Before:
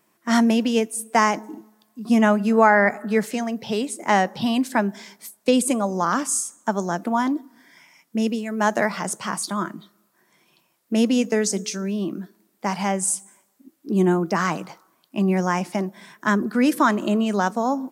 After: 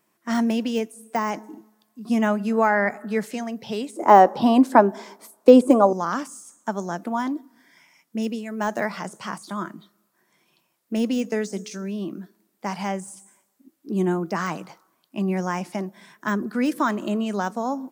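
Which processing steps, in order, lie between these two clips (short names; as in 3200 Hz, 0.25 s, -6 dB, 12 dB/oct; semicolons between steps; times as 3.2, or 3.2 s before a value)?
de-esser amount 65%; 3.96–5.93 band shelf 580 Hz +13 dB 2.7 oct; gain -4 dB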